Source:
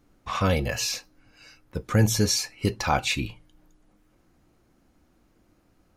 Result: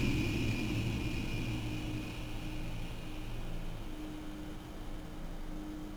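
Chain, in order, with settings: Paulstretch 29×, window 1.00 s, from 3.59 s; sliding maximum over 5 samples; trim +18 dB

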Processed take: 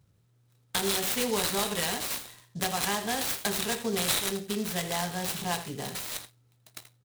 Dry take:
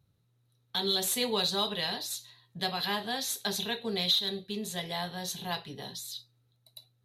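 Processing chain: compression 2.5:1, threshold -32 dBFS, peak gain reduction 7 dB; delay 81 ms -12.5 dB; delay time shaken by noise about 5.2 kHz, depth 0.055 ms; trim +5.5 dB

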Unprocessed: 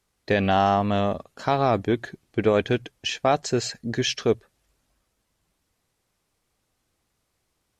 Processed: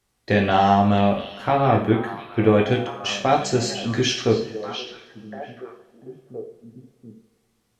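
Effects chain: 0.98–2.61 s: high-order bell 5.5 kHz -11.5 dB 1.2 oct; repeats whose band climbs or falls 694 ms, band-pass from 3.4 kHz, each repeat -1.4 oct, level -7.5 dB; two-slope reverb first 0.45 s, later 2.4 s, from -21 dB, DRR 0 dB

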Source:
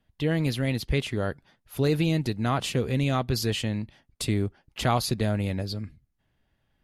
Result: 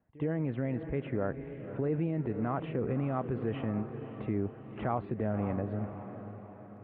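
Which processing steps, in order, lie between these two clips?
Gaussian low-pass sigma 5.4 samples; on a send: echo that smears into a reverb 528 ms, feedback 51%, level -13.5 dB; on the sum: peak limiter -22.5 dBFS, peak gain reduction 8 dB; high-pass 200 Hz 6 dB/octave; pre-echo 67 ms -20.5 dB; trim +1.5 dB

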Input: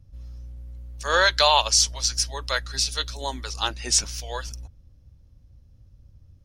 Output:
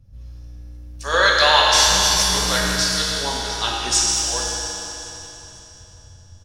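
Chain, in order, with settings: 1.73–2.75 s: one-bit delta coder 64 kbps, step -22 dBFS; feedback delay 537 ms, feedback 40%, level -18.5 dB; reverberation RT60 3.5 s, pre-delay 5 ms, DRR -4.5 dB

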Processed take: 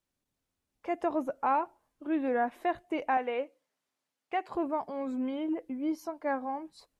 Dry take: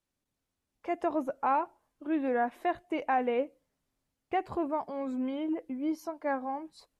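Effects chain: 3.17–4.55 s: frequency weighting A

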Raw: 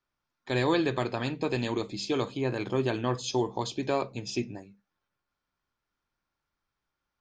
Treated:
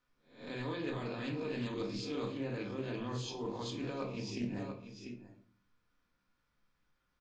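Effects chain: reverse spectral sustain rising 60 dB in 0.35 s; peaking EQ 750 Hz -5.5 dB 0.51 oct; delay 693 ms -20.5 dB; peak limiter -19.5 dBFS, peak gain reduction 5.5 dB; reverse; compression 6:1, threshold -41 dBFS, peak gain reduction 15 dB; reverse; treble shelf 7.5 kHz -8.5 dB; simulated room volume 390 m³, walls furnished, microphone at 1.9 m; loudspeaker Doppler distortion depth 0.17 ms; trim +1 dB

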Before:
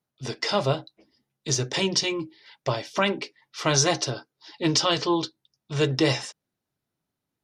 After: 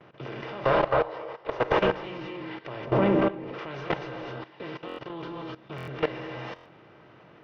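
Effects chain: spectral levelling over time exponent 0.4; 0.64–1.78 s: graphic EQ 125/250/500/1000 Hz -5/-12/+11/+10 dB; 4.15–5.10 s: compression 16:1, threshold -28 dBFS, peak gain reduction 15.5 dB; one-sided clip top -16 dBFS, bottom -2.5 dBFS; low-pass 2.7 kHz 24 dB/octave; gated-style reverb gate 290 ms rising, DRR 1 dB; gate with hold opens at -32 dBFS; 2.85–3.59 s: tilt shelf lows +8.5 dB, about 1.1 kHz; level held to a coarse grid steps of 16 dB; buffer glitch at 4.87/5.76/6.54 s, samples 1024, times 4; trim -5 dB

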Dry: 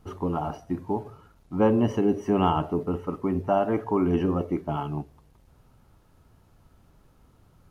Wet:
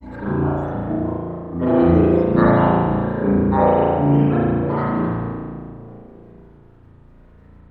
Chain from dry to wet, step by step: treble shelf 3.3 kHz -10.5 dB; two-band feedback delay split 560 Hz, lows 371 ms, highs 152 ms, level -9.5 dB; granulator, pitch spread up and down by 7 st; spring tank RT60 1.7 s, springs 35 ms, chirp 55 ms, DRR -8.5 dB

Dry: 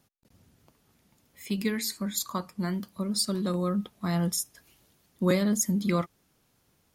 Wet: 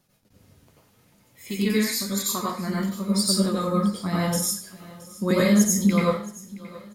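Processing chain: flange 0.91 Hz, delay 5.1 ms, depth 9.5 ms, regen +43%; feedback delay 672 ms, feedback 41%, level -19.5 dB; reverberation RT60 0.40 s, pre-delay 83 ms, DRR -5.5 dB; trim +4 dB

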